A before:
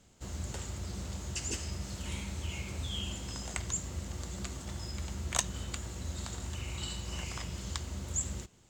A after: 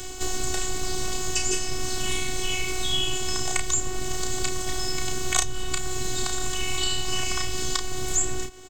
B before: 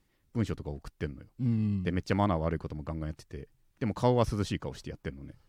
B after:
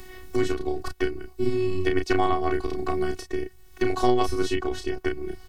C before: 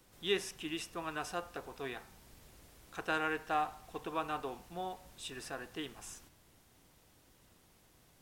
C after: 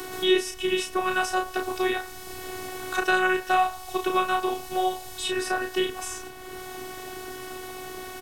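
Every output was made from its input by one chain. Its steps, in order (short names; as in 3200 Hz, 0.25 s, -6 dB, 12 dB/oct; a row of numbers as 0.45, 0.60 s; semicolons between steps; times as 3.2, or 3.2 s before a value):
doubler 32 ms -5 dB; robotiser 371 Hz; three-band squash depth 70%; match loudness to -27 LUFS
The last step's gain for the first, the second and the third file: +14.5, +10.0, +15.0 dB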